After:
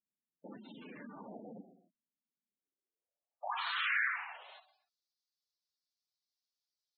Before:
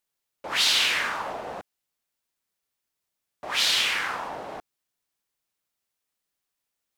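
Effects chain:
reverb whose tail is shaped and stops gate 310 ms falling, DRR 7.5 dB
band-pass filter sweep 220 Hz → 4,700 Hz, 0:02.44–0:04.76
gate on every frequency bin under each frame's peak −10 dB strong

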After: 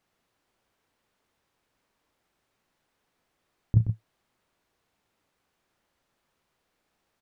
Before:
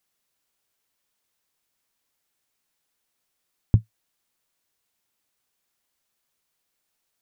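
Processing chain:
low-pass filter 1,200 Hz 6 dB per octave
compressor whose output falls as the input rises −20 dBFS, ratio −0.5
on a send: loudspeakers that aren't time-aligned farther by 12 metres −11 dB, 43 metres −8 dB
on the sum: level +4 dB

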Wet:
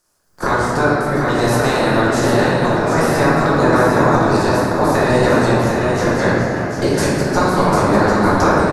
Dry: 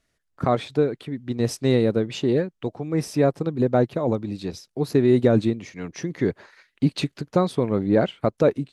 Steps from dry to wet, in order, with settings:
ceiling on every frequency bin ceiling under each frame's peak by 29 dB
downward compressor, threshold −21 dBFS, peak gain reduction 9 dB
flat-topped bell 2,800 Hz −11.5 dB 1.2 octaves
single-tap delay 748 ms −5.5 dB
convolution reverb RT60 2.7 s, pre-delay 5 ms, DRR −8 dB
level +4 dB

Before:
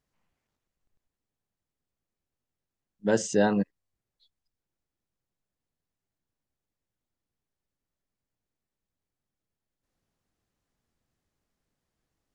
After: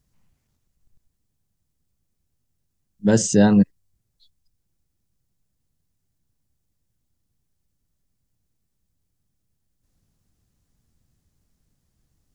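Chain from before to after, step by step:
bass and treble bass +14 dB, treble +9 dB
level +2.5 dB

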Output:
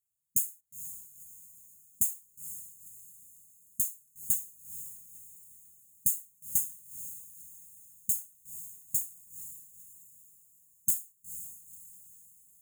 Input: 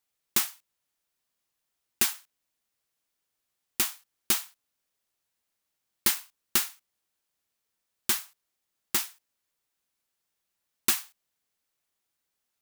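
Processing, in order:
linear-phase brick-wall band-stop 210–6,400 Hz
notch comb filter 210 Hz
feedback delay with all-pass diffusion 489 ms, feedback 45%, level −11.5 dB

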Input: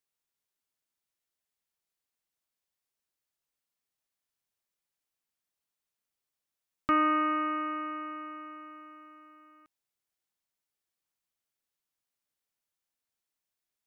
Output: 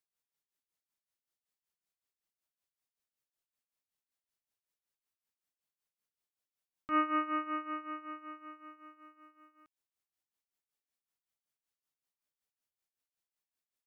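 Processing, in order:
amplitude tremolo 5.3 Hz, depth 79%
level −2 dB

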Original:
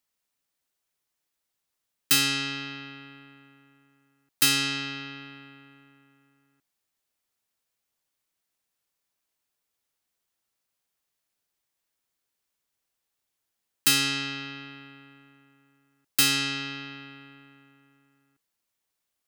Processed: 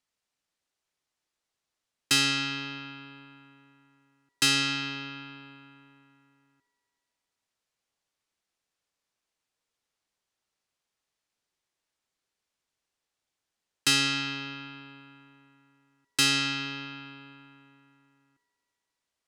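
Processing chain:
low-pass filter 7,600 Hz 12 dB per octave
on a send: delay with a band-pass on its return 67 ms, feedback 83%, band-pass 610 Hz, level −12 dB

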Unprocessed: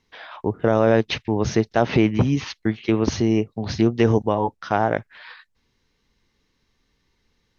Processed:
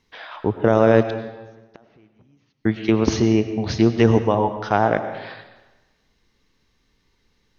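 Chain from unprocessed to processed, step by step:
0:01.08–0:02.65: gate with flip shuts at −23 dBFS, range −39 dB
convolution reverb RT60 1.2 s, pre-delay 60 ms, DRR 9.5 dB
level +2 dB

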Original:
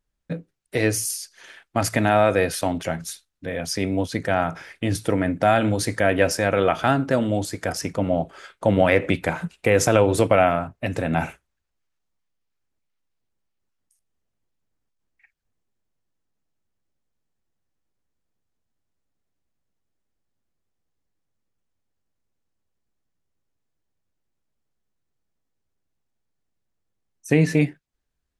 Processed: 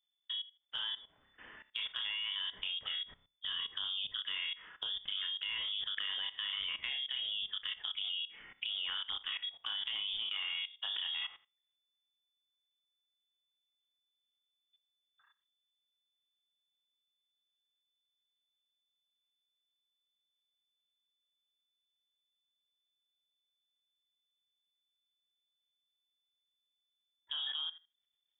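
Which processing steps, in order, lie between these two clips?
voice inversion scrambler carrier 3,500 Hz
downward compressor 2.5 to 1, threshold −32 dBFS, peak gain reduction 13.5 dB
high-shelf EQ 2,200 Hz +7 dB
on a send: flutter between parallel walls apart 5.2 metres, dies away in 0.28 s
on the sum: output level in coarse steps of 16 dB
level −6 dB

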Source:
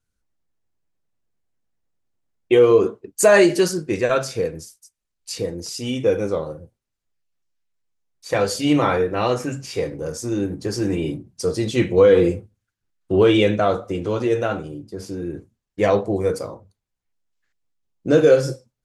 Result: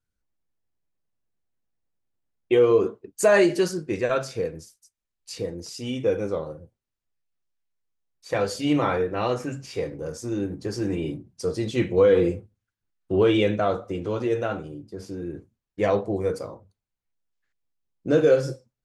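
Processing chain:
high-shelf EQ 5,900 Hz −6 dB
level −4.5 dB

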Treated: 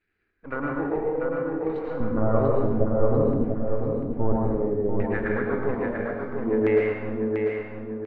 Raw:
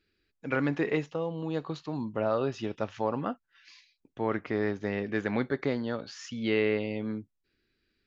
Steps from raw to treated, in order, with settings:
gain on one half-wave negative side −12 dB
0:02.00–0:04.36: spectral tilt −3.5 dB per octave
auto-filter low-pass saw down 0.6 Hz 360–2,100 Hz
repeating echo 692 ms, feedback 43%, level −5 dB
dense smooth reverb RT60 0.9 s, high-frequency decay 0.75×, pre-delay 95 ms, DRR −2 dB

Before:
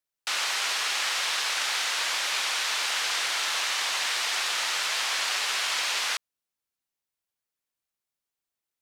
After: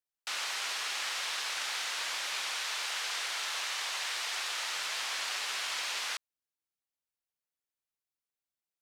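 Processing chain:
0:02.57–0:04.72: parametric band 230 Hz −14.5 dB 0.37 octaves
level −7.5 dB

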